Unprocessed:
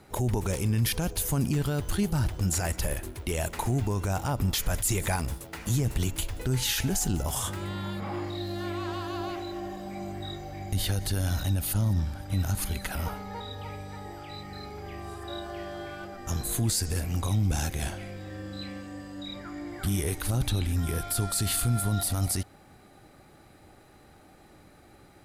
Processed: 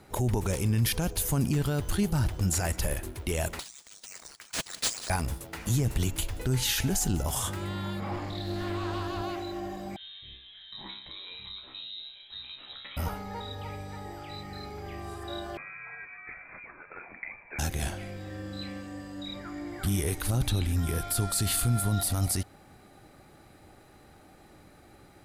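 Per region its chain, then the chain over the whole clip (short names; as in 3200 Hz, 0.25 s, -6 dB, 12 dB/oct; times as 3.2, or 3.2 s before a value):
3.59–5.1 inverse Chebyshev high-pass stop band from 1400 Hz, stop band 70 dB + careless resampling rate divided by 3×, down none, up hold
8.11–9.22 low shelf 160 Hz +10.5 dB + notches 50/100/150/200/250/300/350/400 Hz + Doppler distortion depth 0.15 ms
9.96–12.97 low shelf 340 Hz -7 dB + resonator 65 Hz, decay 0.47 s, mix 90% + inverted band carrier 3900 Hz
15.57–17.59 steep high-pass 660 Hz 48 dB/oct + inverted band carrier 3100 Hz
whole clip: dry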